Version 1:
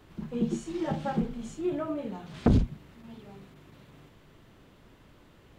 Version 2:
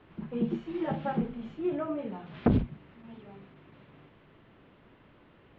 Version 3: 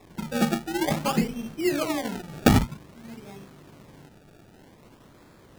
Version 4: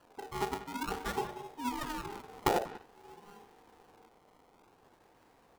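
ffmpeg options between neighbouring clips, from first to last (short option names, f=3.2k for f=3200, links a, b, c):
-af "lowpass=f=3.1k:w=0.5412,lowpass=f=3.1k:w=1.3066,lowshelf=f=77:g=-10.5"
-af "acrusher=samples=29:mix=1:aa=0.000001:lfo=1:lforange=29:lforate=0.52,volume=6dB"
-filter_complex "[0:a]asplit=2[a][b];[b]adelay=190,highpass=300,lowpass=3.4k,asoftclip=type=hard:threshold=-15dB,volume=-12dB[c];[a][c]amix=inputs=2:normalize=0,aeval=exprs='val(0)*sin(2*PI*610*n/s)':c=same,volume=-8.5dB"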